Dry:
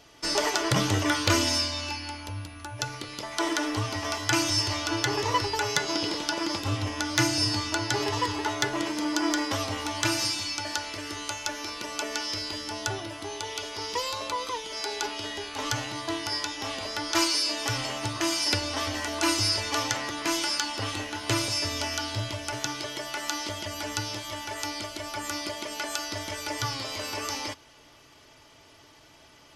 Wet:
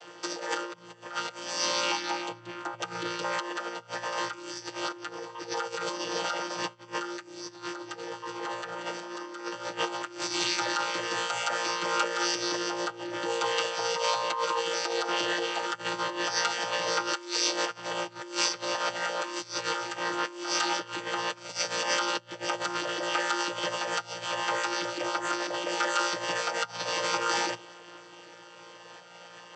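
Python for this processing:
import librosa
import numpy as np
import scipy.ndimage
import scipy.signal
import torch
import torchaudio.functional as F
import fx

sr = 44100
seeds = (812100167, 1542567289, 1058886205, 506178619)

y = fx.chord_vocoder(x, sr, chord='bare fifth', root=46)
y = fx.over_compress(y, sr, threshold_db=-38.0, ratio=-1.0)
y = scipy.signal.sosfilt(scipy.signal.butter(2, 500.0, 'highpass', fs=sr, output='sos'), y)
y = y + 0.86 * np.pad(y, (int(6.4 * sr / 1000.0), 0))[:len(y)]
y = fx.am_noise(y, sr, seeds[0], hz=5.7, depth_pct=55)
y = y * librosa.db_to_amplitude(9.0)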